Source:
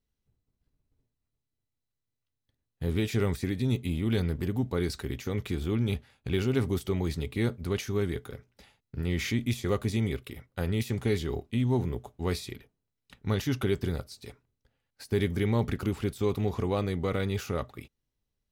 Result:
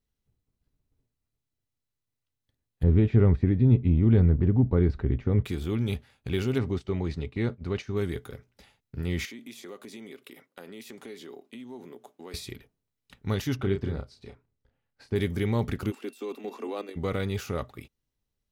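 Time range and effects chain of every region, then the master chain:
2.83–5.45 LPF 2300 Hz + tilt -3 dB/oct
6.58–7.97 air absorption 130 m + notch 3300 Hz, Q 18 + gate -40 dBFS, range -7 dB
9.25–12.34 HPF 230 Hz 24 dB/oct + compressor 3:1, threshold -43 dBFS
13.56–15.16 tape spacing loss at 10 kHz 20 dB + doubler 31 ms -6 dB
15.9–16.95 steep high-pass 220 Hz 96 dB/oct + level quantiser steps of 11 dB + whine 2700 Hz -59 dBFS
whole clip: dry

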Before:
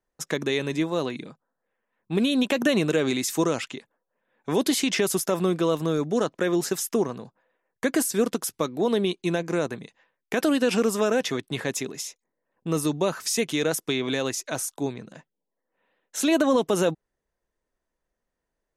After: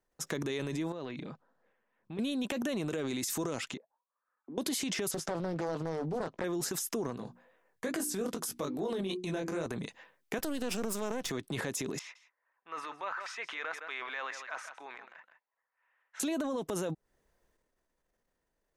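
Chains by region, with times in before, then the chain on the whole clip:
0.92–2.19 LPF 4000 Hz + compressor 8:1, threshold -37 dBFS
3.77–4.58 auto-wah 250–1300 Hz, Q 13, down, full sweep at -34 dBFS + air absorption 320 m
5.11–6.44 air absorption 100 m + doubler 18 ms -12 dB + Doppler distortion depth 0.58 ms
7.16–9.66 notches 60/120/180/240/300/360 Hz + chorus 2.4 Hz, delay 18.5 ms, depth 2.9 ms
10.38–11.3 half-wave gain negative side -12 dB + high shelf 5900 Hz +4.5 dB + three-band expander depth 100%
11.99–16.2 Butterworth band-pass 1500 Hz, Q 1.1 + echo 0.161 s -17 dB
whole clip: dynamic EQ 2600 Hz, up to -3 dB, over -43 dBFS, Q 0.88; transient shaper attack -4 dB, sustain +8 dB; compressor 6:1, threshold -32 dBFS

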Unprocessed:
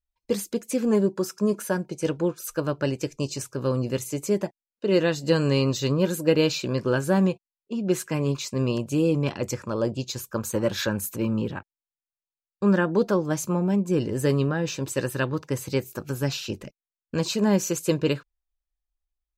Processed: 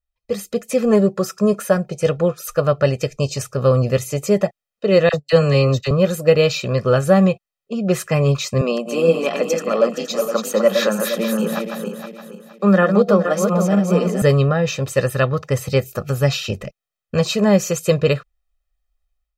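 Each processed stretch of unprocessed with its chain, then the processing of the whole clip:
5.09–5.91 gate -29 dBFS, range -46 dB + dispersion lows, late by 43 ms, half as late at 950 Hz
8.61–14.22 regenerating reverse delay 0.234 s, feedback 58%, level -5 dB + Chebyshev high-pass 170 Hz, order 8
whole clip: tone controls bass -1 dB, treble -6 dB; comb 1.6 ms, depth 78%; AGC gain up to 9 dB

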